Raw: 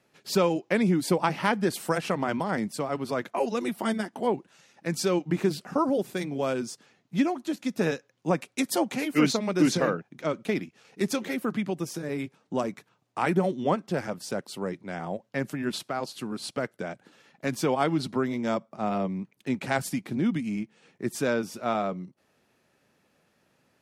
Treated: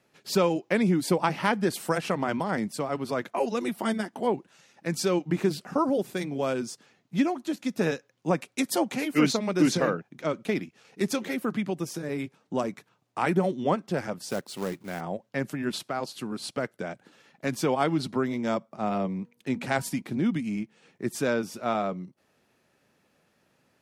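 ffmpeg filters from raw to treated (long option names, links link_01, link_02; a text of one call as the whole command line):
ffmpeg -i in.wav -filter_complex "[0:a]asettb=1/sr,asplit=3[link_01][link_02][link_03];[link_01]atrim=end=14.294[link_04];[link_02]atrim=start=14.29:end=15.01,asetpts=PTS-STARTPTS,afade=type=in:duration=0.004:curve=qsin,afade=type=out:start_time=0.716:duration=0.004:curve=qsin,acrusher=bits=3:mode=log:mix=0:aa=0.000001[link_05];[link_03]atrim=start=15.006[link_06];[link_04][link_05]acrossfade=duration=0.004:curve1=hsin:curve2=qsin[link_07];[link_07][link_06]acrossfade=duration=0.004:curve1=qsin:curve2=hsin,asettb=1/sr,asplit=3[link_08][link_09][link_10];[link_08]atrim=end=19.034[link_11];[link_09]atrim=start=19.03:end=20.02,asetpts=PTS-STARTPTS,afade=type=in:duration=0.004:curve=qsin,afade=type=out:start_time=0.986:duration=0.004:curve=qsin,bandreject=frequency=239.3:width_type=h:width=4,bandreject=frequency=478.6:width_type=h:width=4,bandreject=frequency=717.9:width_type=h:width=4,bandreject=frequency=957.2:width_type=h:width=4[link_12];[link_10]atrim=start=20.016[link_13];[link_11][link_12]acrossfade=duration=0.004:curve1=hsin:curve2=qsin[link_14];[link_14][link_13]acrossfade=duration=0.004:curve1=qsin:curve2=hsin" out.wav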